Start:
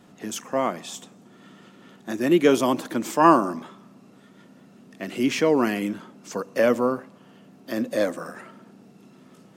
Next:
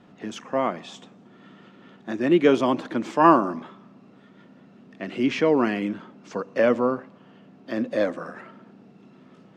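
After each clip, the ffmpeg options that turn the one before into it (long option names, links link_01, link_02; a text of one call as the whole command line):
ffmpeg -i in.wav -af "lowpass=3600" out.wav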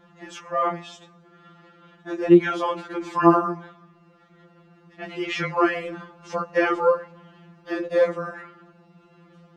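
ffmpeg -i in.wav -af "equalizer=frequency=1200:width=1.3:gain=5,dynaudnorm=framelen=220:gausssize=21:maxgain=12.5dB,afftfilt=real='re*2.83*eq(mod(b,8),0)':imag='im*2.83*eq(mod(b,8),0)':win_size=2048:overlap=0.75,volume=1dB" out.wav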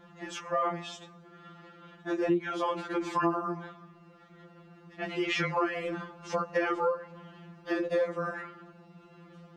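ffmpeg -i in.wav -af "acompressor=threshold=-26dB:ratio=5" out.wav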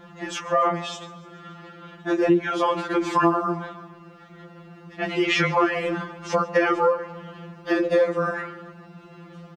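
ffmpeg -i in.wav -af "aecho=1:1:145|290|435|580|725:0.1|0.06|0.036|0.0216|0.013,volume=8.5dB" out.wav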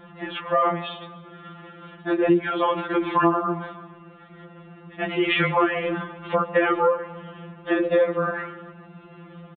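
ffmpeg -i in.wav -af "aresample=8000,aresample=44100" out.wav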